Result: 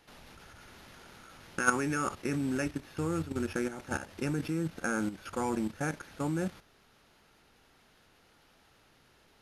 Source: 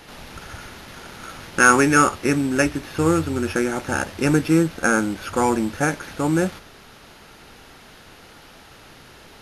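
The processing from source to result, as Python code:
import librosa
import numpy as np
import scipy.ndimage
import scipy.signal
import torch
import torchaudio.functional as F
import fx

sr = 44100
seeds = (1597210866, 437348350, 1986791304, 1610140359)

y = fx.dynamic_eq(x, sr, hz=160.0, q=1.1, threshold_db=-31.0, ratio=4.0, max_db=4)
y = fx.level_steps(y, sr, step_db=11)
y = F.gain(torch.from_numpy(y), -9.0).numpy()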